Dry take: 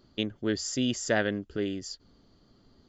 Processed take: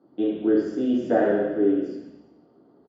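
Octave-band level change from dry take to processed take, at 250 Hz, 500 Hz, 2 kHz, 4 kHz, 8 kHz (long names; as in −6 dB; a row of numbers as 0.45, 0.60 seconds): +9.0 dB, +9.5 dB, −3.0 dB, below −10 dB, can't be measured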